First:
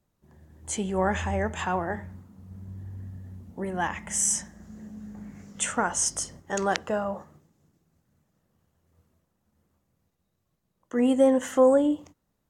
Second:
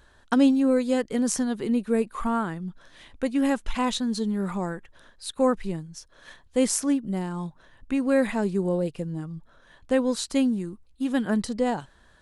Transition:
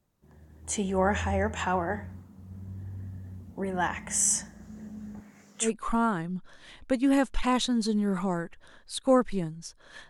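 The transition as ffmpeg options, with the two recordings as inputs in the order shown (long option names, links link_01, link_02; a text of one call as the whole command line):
ffmpeg -i cue0.wav -i cue1.wav -filter_complex "[0:a]asettb=1/sr,asplit=3[link_01][link_02][link_03];[link_01]atrim=end=5.204[link_04];[link_02]atrim=start=5.2:end=5.71,asetpts=PTS-STARTPTS,afade=type=in:duration=0.004:curve=qsin,afade=type=out:start_time=0.506:duration=0.004:curve=qsin,highpass=frequency=660:poles=1[link_05];[link_03]atrim=start=5.706[link_06];[link_04][link_05]acrossfade=duration=0.004:curve1=hsin:curve2=qsin[link_07];[link_07][link_06]acrossfade=duration=0.004:curve1=qsin:curve2=hsin,apad=whole_dur=10.09,atrim=end=10.09,atrim=end=5.71,asetpts=PTS-STARTPTS[link_08];[1:a]atrim=start=1.93:end=6.41,asetpts=PTS-STARTPTS[link_09];[link_08][link_09]acrossfade=duration=0.1:curve1=tri:curve2=tri" out.wav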